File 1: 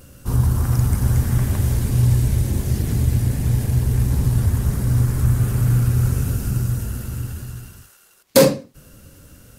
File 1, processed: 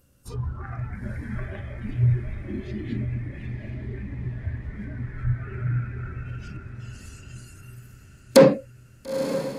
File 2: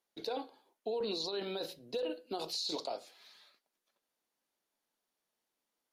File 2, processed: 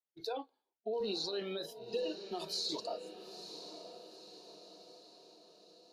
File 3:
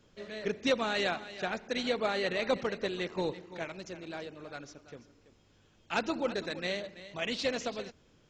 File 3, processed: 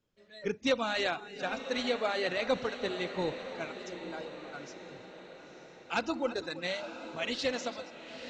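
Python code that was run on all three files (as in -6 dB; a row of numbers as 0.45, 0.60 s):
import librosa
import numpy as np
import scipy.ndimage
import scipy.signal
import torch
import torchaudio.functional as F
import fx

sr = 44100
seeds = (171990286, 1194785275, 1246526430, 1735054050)

y = fx.env_lowpass_down(x, sr, base_hz=2100.0, full_db=-15.0)
y = fx.noise_reduce_blind(y, sr, reduce_db=17)
y = fx.echo_diffused(y, sr, ms=935, feedback_pct=53, wet_db=-10.5)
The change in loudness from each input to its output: -7.0, -1.5, 0.0 LU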